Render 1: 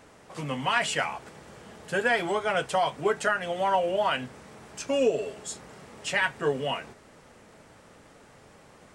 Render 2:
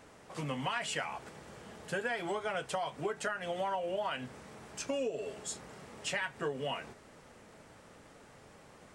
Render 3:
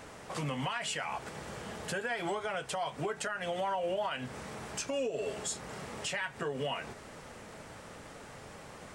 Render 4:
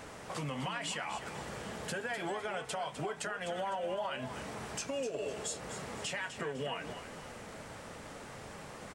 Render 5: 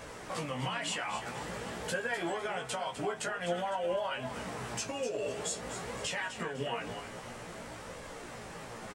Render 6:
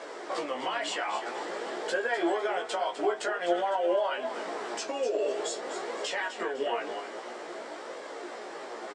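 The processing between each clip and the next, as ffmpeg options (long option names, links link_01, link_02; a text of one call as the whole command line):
ffmpeg -i in.wav -af "acompressor=threshold=-29dB:ratio=6,volume=-3dB" out.wav
ffmpeg -i in.wav -af "equalizer=frequency=300:width_type=o:width=1.4:gain=-2.5,alimiter=level_in=10dB:limit=-24dB:level=0:latency=1:release=253,volume=-10dB,volume=8.5dB" out.wav
ffmpeg -i in.wav -filter_complex "[0:a]acompressor=threshold=-42dB:ratio=1.5,asplit=2[link_01][link_02];[link_02]asplit=4[link_03][link_04][link_05][link_06];[link_03]adelay=253,afreqshift=33,volume=-10dB[link_07];[link_04]adelay=506,afreqshift=66,volume=-18.9dB[link_08];[link_05]adelay=759,afreqshift=99,volume=-27.7dB[link_09];[link_06]adelay=1012,afreqshift=132,volume=-36.6dB[link_10];[link_07][link_08][link_09][link_10]amix=inputs=4:normalize=0[link_11];[link_01][link_11]amix=inputs=2:normalize=0,volume=1dB" out.wav
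ffmpeg -i in.wav -filter_complex "[0:a]flanger=delay=1.8:depth=8:regen=53:speed=0.5:shape=sinusoidal,asplit=2[link_01][link_02];[link_02]adelay=17,volume=-3.5dB[link_03];[link_01][link_03]amix=inputs=2:normalize=0,volume=5dB" out.wav
ffmpeg -i in.wav -af "highpass=frequency=310:width=0.5412,highpass=frequency=310:width=1.3066,equalizer=frequency=360:width_type=q:width=4:gain=8,equalizer=frequency=680:width_type=q:width=4:gain=4,equalizer=frequency=2600:width_type=q:width=4:gain=-5,equalizer=frequency=6300:width_type=q:width=4:gain=-5,lowpass=frequency=7200:width=0.5412,lowpass=frequency=7200:width=1.3066,volume=4dB" out.wav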